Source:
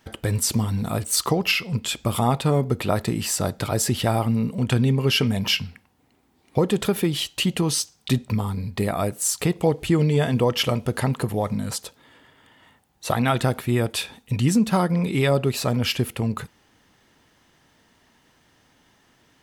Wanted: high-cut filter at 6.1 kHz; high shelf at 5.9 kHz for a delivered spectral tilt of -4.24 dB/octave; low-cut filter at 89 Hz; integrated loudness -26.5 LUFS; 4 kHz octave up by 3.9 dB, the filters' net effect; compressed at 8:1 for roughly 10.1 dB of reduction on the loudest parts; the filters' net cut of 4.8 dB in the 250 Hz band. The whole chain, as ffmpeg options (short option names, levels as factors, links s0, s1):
-af "highpass=89,lowpass=6100,equalizer=f=250:t=o:g=-6.5,equalizer=f=4000:t=o:g=7.5,highshelf=f=5900:g=-3.5,acompressor=threshold=0.0562:ratio=8,volume=1.41"